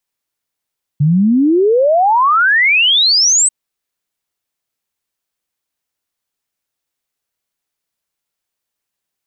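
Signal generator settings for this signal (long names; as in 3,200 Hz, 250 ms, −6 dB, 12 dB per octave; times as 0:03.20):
exponential sine sweep 140 Hz → 8,300 Hz 2.49 s −8 dBFS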